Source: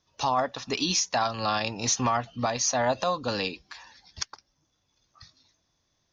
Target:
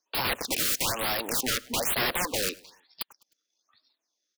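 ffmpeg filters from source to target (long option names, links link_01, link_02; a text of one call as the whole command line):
ffmpeg -i in.wav -filter_complex "[0:a]afwtdn=0.0112,highpass=frequency=290:width=0.5412,highpass=frequency=290:width=1.3066,highshelf=frequency=4200:gain=11.5,asplit=2[link_01][link_02];[link_02]acompressor=threshold=-30dB:ratio=6,volume=-1dB[link_03];[link_01][link_03]amix=inputs=2:normalize=0,atempo=1.4,aeval=exprs='(mod(11.2*val(0)+1,2)-1)/11.2':channel_layout=same,asplit=2[link_04][link_05];[link_05]aecho=0:1:103|206|309:0.0668|0.0301|0.0135[link_06];[link_04][link_06]amix=inputs=2:normalize=0,afftfilt=real='re*(1-between(b*sr/1024,810*pow(8000/810,0.5+0.5*sin(2*PI*1.1*pts/sr))/1.41,810*pow(8000/810,0.5+0.5*sin(2*PI*1.1*pts/sr))*1.41))':imag='im*(1-between(b*sr/1024,810*pow(8000/810,0.5+0.5*sin(2*PI*1.1*pts/sr))/1.41,810*pow(8000/810,0.5+0.5*sin(2*PI*1.1*pts/sr))*1.41))':win_size=1024:overlap=0.75" out.wav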